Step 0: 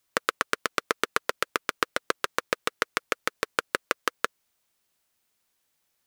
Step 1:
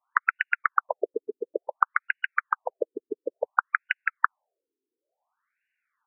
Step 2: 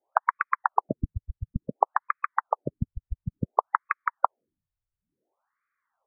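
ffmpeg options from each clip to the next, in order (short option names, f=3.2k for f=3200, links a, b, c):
-af "equalizer=f=810:w=0.49:g=11,afftfilt=real='re*between(b*sr/1024,320*pow(2100/320,0.5+0.5*sin(2*PI*0.57*pts/sr))/1.41,320*pow(2100/320,0.5+0.5*sin(2*PI*0.57*pts/sr))*1.41)':imag='im*between(b*sr/1024,320*pow(2100/320,0.5+0.5*sin(2*PI*0.57*pts/sr))/1.41,320*pow(2100/320,0.5+0.5*sin(2*PI*0.57*pts/sr))*1.41)':win_size=1024:overlap=0.75,volume=-1dB"
-af "highpass=f=190:t=q:w=0.5412,highpass=f=190:t=q:w=1.307,lowpass=f=2.5k:t=q:w=0.5176,lowpass=f=2.5k:t=q:w=0.7071,lowpass=f=2.5k:t=q:w=1.932,afreqshift=-370"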